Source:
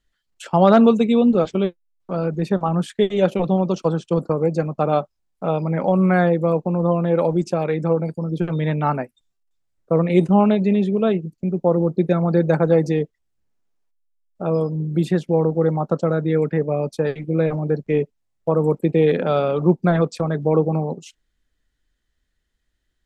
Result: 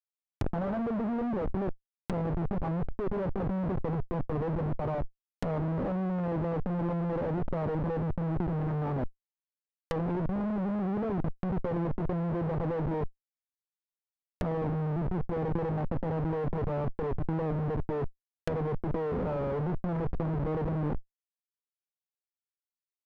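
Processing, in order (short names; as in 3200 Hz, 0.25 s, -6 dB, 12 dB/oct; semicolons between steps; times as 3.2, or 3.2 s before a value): Schmitt trigger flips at -27 dBFS; negative-ratio compressor -27 dBFS, ratio -1; treble ducked by the level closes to 1000 Hz, closed at -27.5 dBFS; gain -2.5 dB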